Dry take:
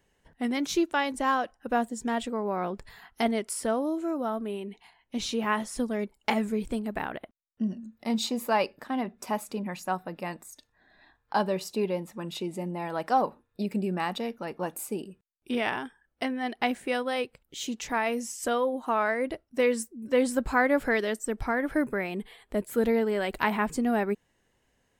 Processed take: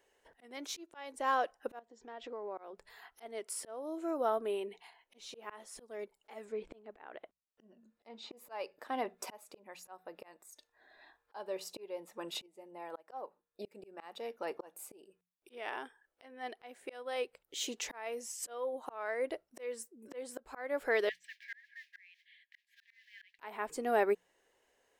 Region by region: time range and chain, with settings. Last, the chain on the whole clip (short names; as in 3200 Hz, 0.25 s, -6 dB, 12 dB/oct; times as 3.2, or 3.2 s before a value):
1.79–2.58 compressor 10:1, threshold -36 dBFS + steep low-pass 6300 Hz + high shelf 5000 Hz -8.5 dB
6.45–8.37 LPF 11000 Hz + treble ducked by the level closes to 3000 Hz, closed at -28 dBFS
12.46–13.65 dynamic EQ 4600 Hz, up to -5 dB, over -50 dBFS, Q 0.93 + upward expander, over -37 dBFS
21.09–23.39 modulation noise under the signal 17 dB + brick-wall FIR high-pass 1600 Hz + air absorption 280 m
whole clip: resonant low shelf 280 Hz -14 dB, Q 1.5; notches 60/120/180 Hz; auto swell 0.632 s; gain -1.5 dB